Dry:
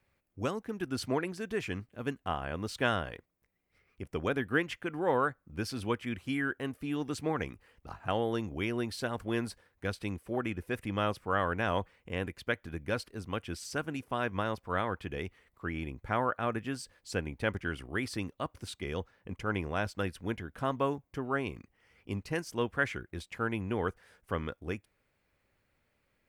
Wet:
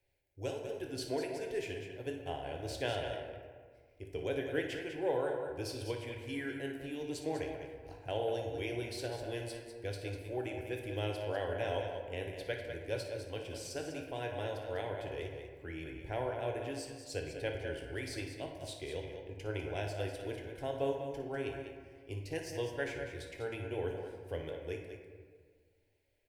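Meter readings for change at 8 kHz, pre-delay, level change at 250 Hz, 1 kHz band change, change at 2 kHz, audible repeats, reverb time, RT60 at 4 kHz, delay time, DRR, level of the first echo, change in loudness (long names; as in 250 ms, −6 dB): −2.0 dB, 7 ms, −7.5 dB, −8.5 dB, −8.0 dB, 2, 1.7 s, 0.90 s, 58 ms, 0.5 dB, −12.0 dB, −4.5 dB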